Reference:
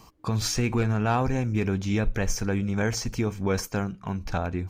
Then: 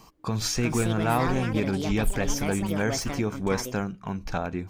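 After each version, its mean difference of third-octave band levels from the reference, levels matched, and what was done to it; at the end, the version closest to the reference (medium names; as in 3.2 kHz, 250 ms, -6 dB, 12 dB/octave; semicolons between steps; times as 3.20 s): 4.0 dB: peaking EQ 82 Hz -8.5 dB 0.62 oct; ever faster or slower copies 447 ms, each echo +6 st, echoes 2, each echo -6 dB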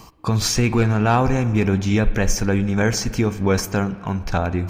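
1.5 dB: reverse; upward compressor, threshold -35 dBFS; reverse; spring tank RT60 2.1 s, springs 43/51/57 ms, chirp 40 ms, DRR 14 dB; trim +7 dB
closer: second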